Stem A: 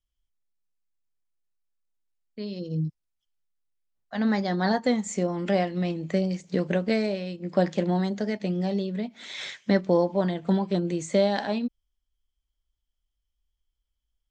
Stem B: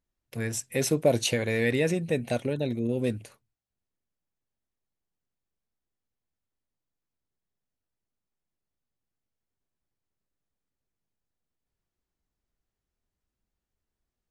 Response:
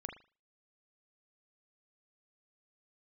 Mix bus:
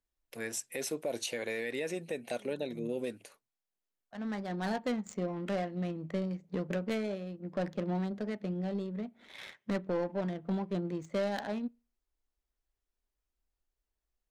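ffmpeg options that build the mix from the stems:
-filter_complex "[0:a]aemphasis=mode=production:type=75fm,asoftclip=type=tanh:threshold=-16.5dB,adynamicsmooth=sensitivity=2.5:basefreq=800,volume=-7dB,asplit=2[a][b];[b]volume=-21dB[c];[1:a]highpass=320,volume=-3.5dB,asplit=2[d][e];[e]apad=whole_len=630886[f];[a][f]sidechaincompress=threshold=-46dB:ratio=8:attack=16:release=1360[g];[2:a]atrim=start_sample=2205[h];[c][h]afir=irnorm=-1:irlink=0[i];[g][d][i]amix=inputs=3:normalize=0,alimiter=level_in=1dB:limit=-24dB:level=0:latency=1:release=170,volume=-1dB"

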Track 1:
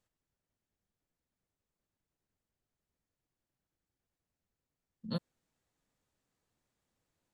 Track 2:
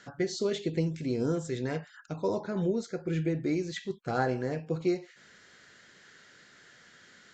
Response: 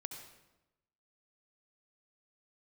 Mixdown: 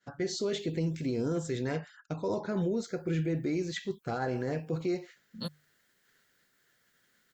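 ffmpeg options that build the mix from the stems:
-filter_complex "[0:a]aemphasis=mode=production:type=75fm,bandreject=f=50:t=h:w=6,bandreject=f=100:t=h:w=6,bandreject=f=150:t=h:w=6,adelay=300,volume=-1.5dB,asplit=3[a][b][c];[a]atrim=end=1.71,asetpts=PTS-STARTPTS,afade=t=out:st=1.706:d=0.004:c=hsin[d];[b]atrim=start=1.71:end=2.5,asetpts=PTS-STARTPTS,volume=0[e];[c]atrim=start=2.5,asetpts=PTS-STARTPTS,afade=t=in:d=0.004:c=hsin[f];[d][e][f]concat=n=3:v=0:a=1[g];[1:a]agate=range=-33dB:threshold=-45dB:ratio=3:detection=peak,volume=1dB[h];[g][h]amix=inputs=2:normalize=0,alimiter=limit=-23.5dB:level=0:latency=1:release=15"

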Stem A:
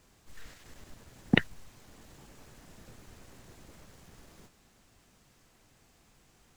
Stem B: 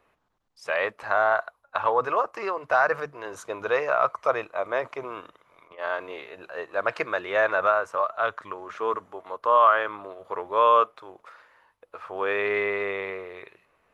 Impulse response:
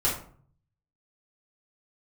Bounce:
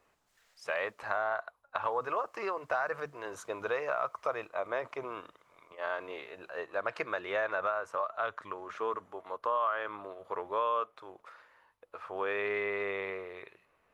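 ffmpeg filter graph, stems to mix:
-filter_complex "[0:a]highpass=f=540:w=0.5412,highpass=f=540:w=1.3066,volume=-14.5dB,asplit=3[a][b][c];[a]atrim=end=1.17,asetpts=PTS-STARTPTS,afade=t=out:st=1.166:d=0.004:c=hsin[d];[b]atrim=start=1.17:end=1.83,asetpts=PTS-STARTPTS,volume=0[e];[c]atrim=start=1.83,asetpts=PTS-STARTPTS,afade=t=in:d=0.004:c=hsin[f];[d][e][f]concat=n=3:v=0:a=1[g];[1:a]acompressor=threshold=-25dB:ratio=3,volume=-4.5dB[h];[g][h]amix=inputs=2:normalize=0"

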